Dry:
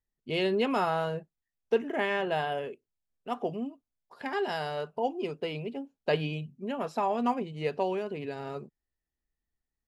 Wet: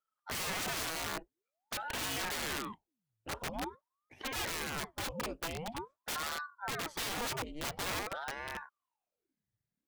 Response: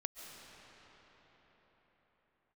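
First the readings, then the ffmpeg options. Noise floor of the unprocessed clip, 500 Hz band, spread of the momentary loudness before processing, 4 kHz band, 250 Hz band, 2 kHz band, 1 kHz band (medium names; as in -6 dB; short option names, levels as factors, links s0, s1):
under -85 dBFS, -14.0 dB, 11 LU, +1.5 dB, -11.0 dB, -1.5 dB, -7.5 dB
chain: -af "aeval=exprs='(mod(25.1*val(0)+1,2)-1)/25.1':c=same,aeval=exprs='val(0)*sin(2*PI*720*n/s+720*0.85/0.47*sin(2*PI*0.47*n/s))':c=same,volume=0.891"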